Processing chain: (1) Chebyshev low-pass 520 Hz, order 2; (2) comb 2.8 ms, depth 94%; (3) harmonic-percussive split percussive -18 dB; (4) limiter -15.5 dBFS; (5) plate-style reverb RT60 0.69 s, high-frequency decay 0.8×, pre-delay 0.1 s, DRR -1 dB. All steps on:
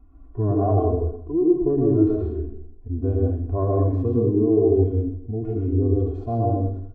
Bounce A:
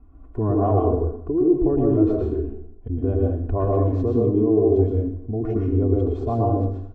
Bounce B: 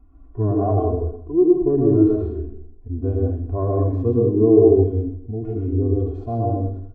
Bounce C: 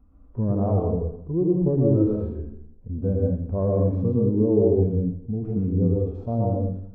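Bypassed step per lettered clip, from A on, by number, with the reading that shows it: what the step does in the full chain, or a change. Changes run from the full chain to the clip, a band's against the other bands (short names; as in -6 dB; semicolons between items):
3, momentary loudness spread change -1 LU; 4, crest factor change +2.5 dB; 2, 1 kHz band -5.5 dB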